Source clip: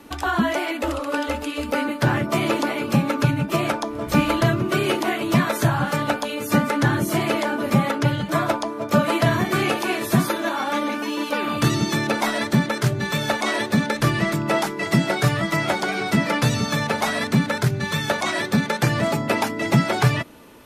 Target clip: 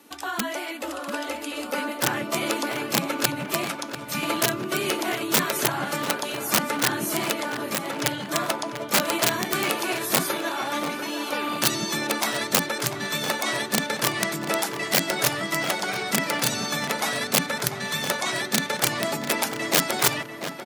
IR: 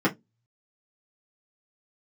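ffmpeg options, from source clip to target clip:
-filter_complex "[0:a]asettb=1/sr,asplit=3[link_01][link_02][link_03];[link_01]atrim=end=3.654[link_04];[link_02]atrim=start=3.65:end=4.23,asetpts=PTS-STARTPTS,afade=type=in:duration=0.004:curve=qsin,afade=type=out:start_time=0.576:duration=0.004:curve=qsin,equalizer=frequency=440:width_type=o:width=2:gain=-13[link_05];[link_03]atrim=start=4.226[link_06];[link_04][link_05]acrossfade=duration=0.004:curve1=hsin:curve2=qsin[link_07];[link_07][link_06]acrossfade=duration=0.004:curve1=qsin:curve2=hsin,aeval=exprs='(mod(2.99*val(0)+1,2)-1)/2.99':channel_layout=same,asplit=3[link_08][link_09][link_10];[link_08]afade=type=out:start_time=7.32:duration=0.02[link_11];[link_09]acompressor=threshold=-21dB:ratio=6,afade=type=in:start_time=7.32:duration=0.02,afade=type=out:start_time=7.95:duration=0.02[link_12];[link_10]afade=type=in:start_time=7.95:duration=0.02[link_13];[link_11][link_12][link_13]amix=inputs=3:normalize=0,asplit=2[link_14][link_15];[link_15]adelay=693,lowpass=frequency=3000:poles=1,volume=-9dB,asplit=2[link_16][link_17];[link_17]adelay=693,lowpass=frequency=3000:poles=1,volume=0.54,asplit=2[link_18][link_19];[link_19]adelay=693,lowpass=frequency=3000:poles=1,volume=0.54,asplit=2[link_20][link_21];[link_21]adelay=693,lowpass=frequency=3000:poles=1,volume=0.54,asplit=2[link_22][link_23];[link_23]adelay=693,lowpass=frequency=3000:poles=1,volume=0.54,asplit=2[link_24][link_25];[link_25]adelay=693,lowpass=frequency=3000:poles=1,volume=0.54[link_26];[link_14][link_16][link_18][link_20][link_22][link_24][link_26]amix=inputs=7:normalize=0,dynaudnorm=framelen=230:gausssize=11:maxgain=3.5dB,highpass=210,highshelf=frequency=3500:gain=9,volume=-8.5dB"

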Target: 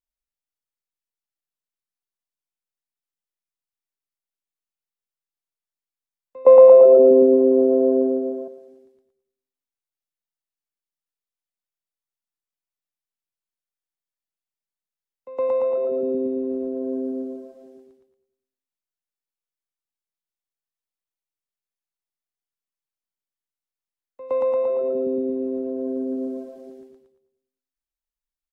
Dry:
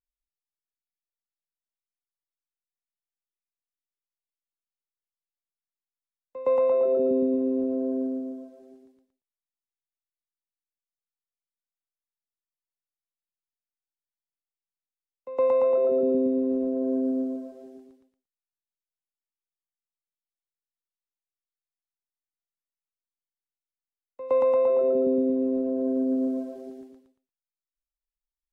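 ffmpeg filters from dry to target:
ffmpeg -i in.wav -filter_complex "[0:a]asettb=1/sr,asplit=3[link_01][link_02][link_03];[link_01]atrim=end=6.454[link_04];[link_02]atrim=start=6.45:end=8.48,asetpts=PTS-STARTPTS,afade=type=in:duration=0.004:curve=qsin,afade=type=out:start_time=2.026:duration=0.004:curve=qsin,equalizer=frequency=620:width_type=o:width=2.5:gain=14.5[link_05];[link_03]atrim=start=8.476[link_06];[link_04][link_05]acrossfade=duration=0.004:curve1=hsin:curve2=qsin[link_07];[link_07][link_06]acrossfade=duration=0.004:curve1=qsin:curve2=hsin,asplit=2[link_08][link_09];[link_09]adelay=102,lowpass=frequency=1200:poles=1,volume=-9.5dB,asplit=2[link_10][link_11];[link_11]adelay=102,lowpass=frequency=1200:poles=1,volume=0.51,asplit=2[link_12][link_13];[link_13]adelay=102,lowpass=frequency=1200:poles=1,volume=0.51,asplit=2[link_14][link_15];[link_15]adelay=102,lowpass=frequency=1200:poles=1,volume=0.51,asplit=2[link_16][link_17];[link_17]adelay=102,lowpass=frequency=1200:poles=1,volume=0.51,asplit=2[link_18][link_19];[link_19]adelay=102,lowpass=frequency=1200:poles=1,volume=0.51[link_20];[link_08][link_10][link_12][link_14][link_16][link_18][link_20]amix=inputs=7:normalize=0,volume=-1dB" out.wav

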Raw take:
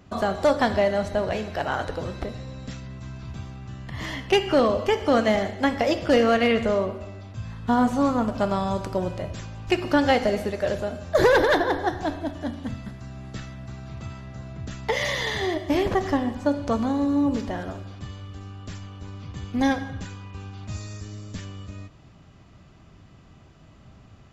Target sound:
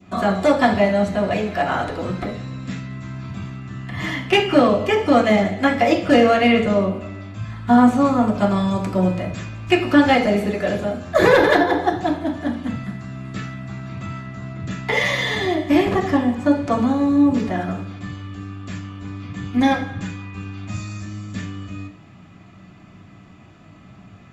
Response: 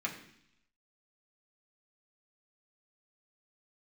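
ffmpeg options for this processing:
-filter_complex "[0:a]adynamicequalizer=threshold=0.0112:dfrequency=1600:dqfactor=1.4:tfrequency=1600:tqfactor=1.4:attack=5:release=100:ratio=0.375:range=3:mode=cutabove:tftype=bell[link_01];[1:a]atrim=start_sample=2205,afade=type=out:start_time=0.14:duration=0.01,atrim=end_sample=6615[link_02];[link_01][link_02]afir=irnorm=-1:irlink=0,volume=4dB"

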